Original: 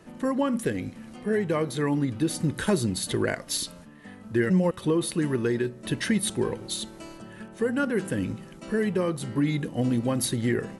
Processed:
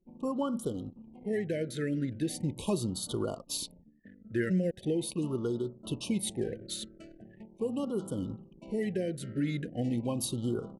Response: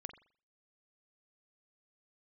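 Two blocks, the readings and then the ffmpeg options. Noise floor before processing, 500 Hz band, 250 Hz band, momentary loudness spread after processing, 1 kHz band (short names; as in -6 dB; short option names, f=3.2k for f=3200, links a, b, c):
-46 dBFS, -6.5 dB, -6.5 dB, 9 LU, -10.0 dB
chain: -af "anlmdn=0.251,afftfilt=real='re*(1-between(b*sr/1024,910*pow(2100/910,0.5+0.5*sin(2*PI*0.4*pts/sr))/1.41,910*pow(2100/910,0.5+0.5*sin(2*PI*0.4*pts/sr))*1.41))':imag='im*(1-between(b*sr/1024,910*pow(2100/910,0.5+0.5*sin(2*PI*0.4*pts/sr))/1.41,910*pow(2100/910,0.5+0.5*sin(2*PI*0.4*pts/sr))*1.41))':win_size=1024:overlap=0.75,volume=-6.5dB"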